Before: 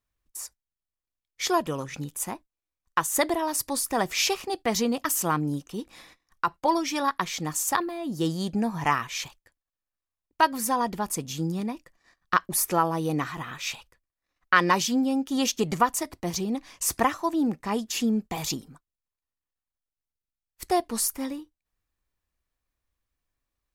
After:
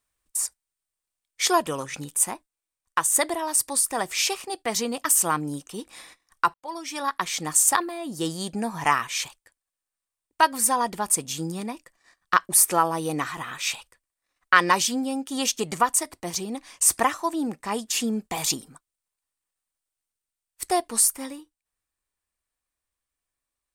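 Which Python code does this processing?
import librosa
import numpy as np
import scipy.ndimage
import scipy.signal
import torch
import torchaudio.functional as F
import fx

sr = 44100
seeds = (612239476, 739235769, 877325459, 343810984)

y = fx.edit(x, sr, fx.fade_in_span(start_s=6.54, length_s=0.86), tone=tone)
y = fx.peak_eq(y, sr, hz=8700.0, db=11.0, octaves=0.32)
y = fx.rider(y, sr, range_db=4, speed_s=2.0)
y = fx.low_shelf(y, sr, hz=310.0, db=-9.5)
y = y * librosa.db_to_amplitude(1.5)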